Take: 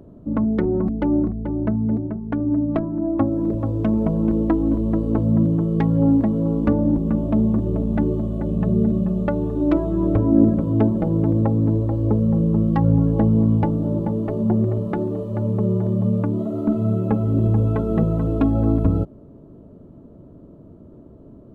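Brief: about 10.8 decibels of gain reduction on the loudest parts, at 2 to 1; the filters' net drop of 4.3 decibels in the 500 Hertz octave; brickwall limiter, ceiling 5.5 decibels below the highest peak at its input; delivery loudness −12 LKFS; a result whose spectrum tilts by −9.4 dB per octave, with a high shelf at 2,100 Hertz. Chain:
parametric band 500 Hz −6 dB
high-shelf EQ 2,100 Hz −3 dB
downward compressor 2 to 1, threshold −33 dBFS
level +19 dB
brickwall limiter −3 dBFS

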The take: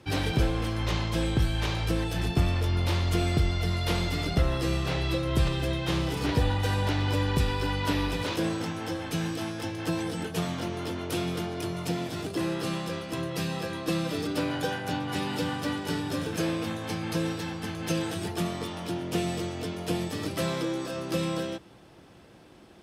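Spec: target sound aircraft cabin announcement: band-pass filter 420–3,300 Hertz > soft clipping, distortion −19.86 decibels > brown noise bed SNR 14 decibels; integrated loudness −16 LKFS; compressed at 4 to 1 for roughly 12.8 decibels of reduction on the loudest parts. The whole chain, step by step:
downward compressor 4 to 1, threshold −35 dBFS
band-pass filter 420–3,300 Hz
soft clipping −34.5 dBFS
brown noise bed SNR 14 dB
level +27.5 dB

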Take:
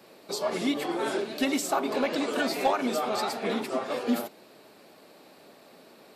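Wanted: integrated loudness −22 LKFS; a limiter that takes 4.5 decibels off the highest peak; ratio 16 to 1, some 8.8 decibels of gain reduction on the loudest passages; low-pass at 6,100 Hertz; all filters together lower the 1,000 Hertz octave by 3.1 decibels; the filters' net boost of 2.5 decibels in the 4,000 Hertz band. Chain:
low-pass filter 6,100 Hz
parametric band 1,000 Hz −4.5 dB
parametric band 4,000 Hz +4 dB
downward compressor 16 to 1, threshold −30 dBFS
level +14 dB
brickwall limiter −12.5 dBFS

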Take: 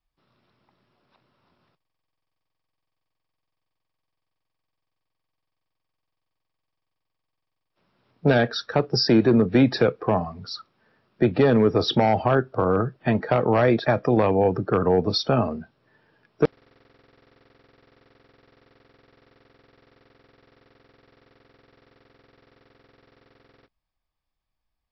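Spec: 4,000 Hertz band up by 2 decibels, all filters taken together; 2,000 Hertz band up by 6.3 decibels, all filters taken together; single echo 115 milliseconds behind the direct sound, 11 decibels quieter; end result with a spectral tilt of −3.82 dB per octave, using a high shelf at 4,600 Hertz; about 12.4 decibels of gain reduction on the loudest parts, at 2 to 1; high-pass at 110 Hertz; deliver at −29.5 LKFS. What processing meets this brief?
high-pass filter 110 Hz
parametric band 2,000 Hz +8.5 dB
parametric band 4,000 Hz +4 dB
high-shelf EQ 4,600 Hz −6.5 dB
downward compressor 2 to 1, threshold −37 dBFS
single-tap delay 115 ms −11 dB
level +2.5 dB

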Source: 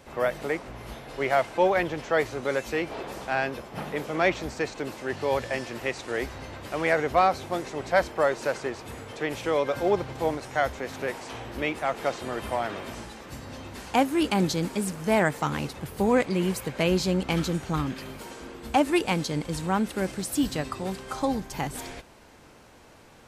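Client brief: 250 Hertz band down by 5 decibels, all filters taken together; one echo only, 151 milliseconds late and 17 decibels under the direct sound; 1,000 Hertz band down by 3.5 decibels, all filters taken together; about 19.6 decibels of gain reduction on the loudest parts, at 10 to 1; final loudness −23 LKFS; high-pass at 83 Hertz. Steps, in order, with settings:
high-pass filter 83 Hz
parametric band 250 Hz −7 dB
parametric band 1,000 Hz −4.5 dB
downward compressor 10 to 1, threshold −40 dBFS
single-tap delay 151 ms −17 dB
level +21 dB

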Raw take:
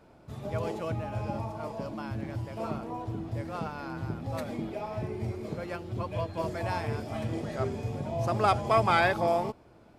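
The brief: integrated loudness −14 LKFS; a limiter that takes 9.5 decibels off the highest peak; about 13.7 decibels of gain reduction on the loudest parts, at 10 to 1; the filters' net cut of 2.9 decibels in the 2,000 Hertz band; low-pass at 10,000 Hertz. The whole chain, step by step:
low-pass filter 10,000 Hz
parametric band 2,000 Hz −4 dB
downward compressor 10 to 1, threshold −34 dBFS
level +29 dB
brickwall limiter −5.5 dBFS

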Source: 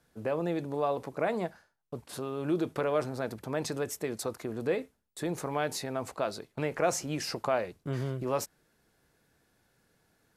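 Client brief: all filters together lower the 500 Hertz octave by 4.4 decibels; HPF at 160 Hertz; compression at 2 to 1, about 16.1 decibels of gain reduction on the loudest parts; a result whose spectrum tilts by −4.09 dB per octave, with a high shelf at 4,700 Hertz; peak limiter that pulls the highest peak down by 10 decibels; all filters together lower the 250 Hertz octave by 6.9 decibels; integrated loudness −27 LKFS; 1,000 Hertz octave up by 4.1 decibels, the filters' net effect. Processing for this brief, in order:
high-pass filter 160 Hz
parametric band 250 Hz −6.5 dB
parametric band 500 Hz −7 dB
parametric band 1,000 Hz +8.5 dB
high-shelf EQ 4,700 Hz +4 dB
downward compressor 2 to 1, threshold −54 dBFS
level +24.5 dB
brickwall limiter −15 dBFS

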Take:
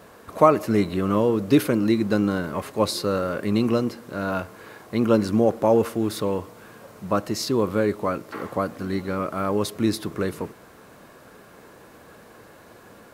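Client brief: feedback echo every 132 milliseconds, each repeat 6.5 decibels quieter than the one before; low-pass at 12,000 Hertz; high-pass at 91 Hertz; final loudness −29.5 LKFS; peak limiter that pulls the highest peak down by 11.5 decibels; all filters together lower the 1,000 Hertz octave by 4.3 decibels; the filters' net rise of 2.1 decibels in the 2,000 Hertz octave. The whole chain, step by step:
high-pass filter 91 Hz
low-pass filter 12,000 Hz
parametric band 1,000 Hz −7.5 dB
parametric band 2,000 Hz +6 dB
brickwall limiter −15 dBFS
repeating echo 132 ms, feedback 47%, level −6.5 dB
level −3.5 dB

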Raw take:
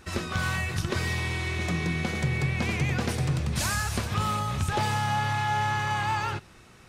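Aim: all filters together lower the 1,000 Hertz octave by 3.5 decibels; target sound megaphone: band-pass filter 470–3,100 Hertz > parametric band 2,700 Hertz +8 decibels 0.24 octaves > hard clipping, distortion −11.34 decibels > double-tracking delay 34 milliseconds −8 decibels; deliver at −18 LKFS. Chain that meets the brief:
band-pass filter 470–3,100 Hz
parametric band 1,000 Hz −4 dB
parametric band 2,700 Hz +8 dB 0.24 octaves
hard clipping −31 dBFS
double-tracking delay 34 ms −8 dB
level +15 dB

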